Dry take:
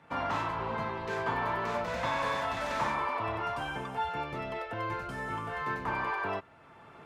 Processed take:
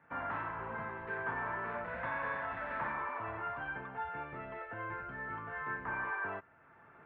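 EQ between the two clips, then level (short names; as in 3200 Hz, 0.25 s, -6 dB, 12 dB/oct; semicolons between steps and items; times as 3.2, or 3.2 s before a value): LPF 2400 Hz 24 dB/oct; bell 1600 Hz +8.5 dB 0.51 oct; -8.5 dB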